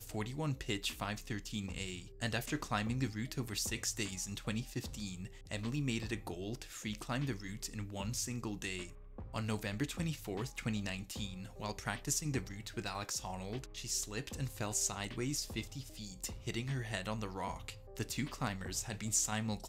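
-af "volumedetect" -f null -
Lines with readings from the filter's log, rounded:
mean_volume: -39.7 dB
max_volume: -19.4 dB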